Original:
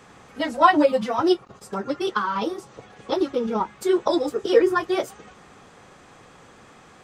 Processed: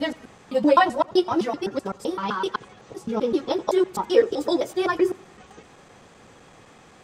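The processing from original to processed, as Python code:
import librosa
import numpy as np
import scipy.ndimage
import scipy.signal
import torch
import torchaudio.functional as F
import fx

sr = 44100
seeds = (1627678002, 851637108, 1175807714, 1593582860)

p1 = fx.block_reorder(x, sr, ms=128.0, group=4)
p2 = fx.peak_eq(p1, sr, hz=1300.0, db=-3.5, octaves=0.77)
y = p2 + fx.echo_feedback(p2, sr, ms=87, feedback_pct=42, wet_db=-23.0, dry=0)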